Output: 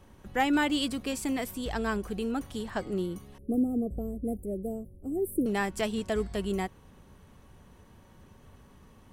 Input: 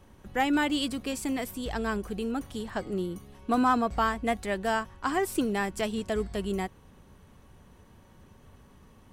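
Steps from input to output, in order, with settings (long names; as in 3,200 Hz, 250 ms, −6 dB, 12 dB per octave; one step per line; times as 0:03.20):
0:03.38–0:05.46: inverse Chebyshev band-stop filter 930–6,300 Hz, stop band 40 dB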